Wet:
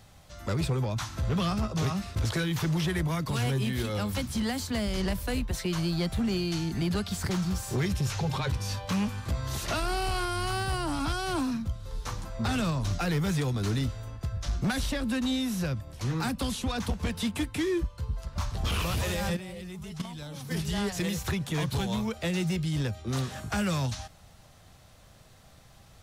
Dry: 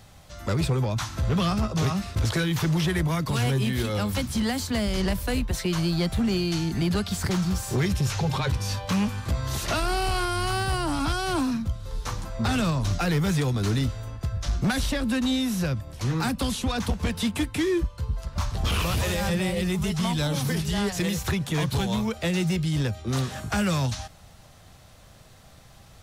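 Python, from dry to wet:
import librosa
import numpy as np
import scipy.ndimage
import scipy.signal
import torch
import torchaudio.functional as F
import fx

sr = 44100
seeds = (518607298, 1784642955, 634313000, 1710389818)

y = fx.level_steps(x, sr, step_db=12, at=(19.32, 20.5), fade=0.02)
y = F.gain(torch.from_numpy(y), -4.0).numpy()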